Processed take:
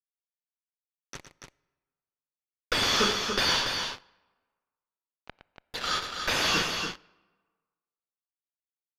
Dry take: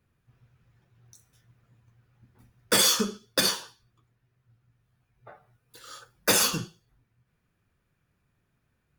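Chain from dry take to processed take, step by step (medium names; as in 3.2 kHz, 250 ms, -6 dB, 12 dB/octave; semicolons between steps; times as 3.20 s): high-pass 200 Hz 12 dB/octave; tilt EQ +4.5 dB/octave; gate with hold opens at -42 dBFS; in parallel at +2 dB: compression, threshold -23 dBFS, peak gain reduction 16 dB; on the sum: fuzz box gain 32 dB, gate -32 dBFS; distance through air 250 m; loudspeakers at several distances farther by 39 m -10 dB, 98 m -6 dB; on a send at -23.5 dB: reverberation RT60 1.5 s, pre-delay 22 ms; on the sum: resampled via 32 kHz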